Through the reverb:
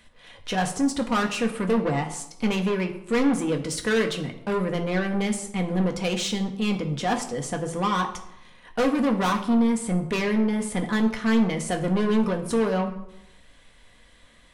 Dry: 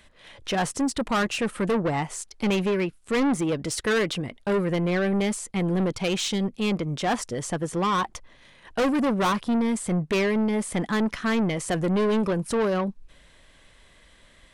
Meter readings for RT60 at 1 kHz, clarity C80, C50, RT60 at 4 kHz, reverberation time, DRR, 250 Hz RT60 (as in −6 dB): 0.85 s, 13.0 dB, 11.0 dB, 0.55 s, 0.85 s, 3.0 dB, 1.0 s